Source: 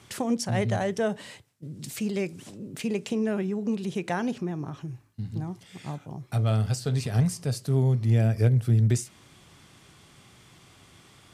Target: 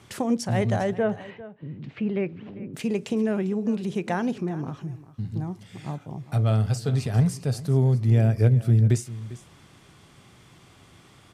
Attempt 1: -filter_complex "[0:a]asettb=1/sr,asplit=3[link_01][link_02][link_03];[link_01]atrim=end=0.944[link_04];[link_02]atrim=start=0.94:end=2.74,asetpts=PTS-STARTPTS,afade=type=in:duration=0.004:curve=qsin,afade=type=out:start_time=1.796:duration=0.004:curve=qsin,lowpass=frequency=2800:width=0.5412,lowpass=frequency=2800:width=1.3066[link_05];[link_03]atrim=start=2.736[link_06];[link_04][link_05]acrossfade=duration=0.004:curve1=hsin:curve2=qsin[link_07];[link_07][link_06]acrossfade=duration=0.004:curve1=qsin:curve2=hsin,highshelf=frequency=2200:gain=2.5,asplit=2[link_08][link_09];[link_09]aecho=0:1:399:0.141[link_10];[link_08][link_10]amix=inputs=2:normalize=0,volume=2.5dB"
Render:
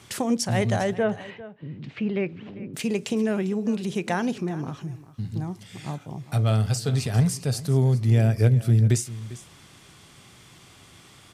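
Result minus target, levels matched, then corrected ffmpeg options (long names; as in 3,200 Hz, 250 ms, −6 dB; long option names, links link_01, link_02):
4,000 Hz band +5.5 dB
-filter_complex "[0:a]asettb=1/sr,asplit=3[link_01][link_02][link_03];[link_01]atrim=end=0.944[link_04];[link_02]atrim=start=0.94:end=2.74,asetpts=PTS-STARTPTS,afade=type=in:duration=0.004:curve=qsin,afade=type=out:start_time=1.796:duration=0.004:curve=qsin,lowpass=frequency=2800:width=0.5412,lowpass=frequency=2800:width=1.3066[link_05];[link_03]atrim=start=2.736[link_06];[link_04][link_05]acrossfade=duration=0.004:curve1=hsin:curve2=qsin[link_07];[link_07][link_06]acrossfade=duration=0.004:curve1=qsin:curve2=hsin,highshelf=frequency=2200:gain=-5,asplit=2[link_08][link_09];[link_09]aecho=0:1:399:0.141[link_10];[link_08][link_10]amix=inputs=2:normalize=0,volume=2.5dB"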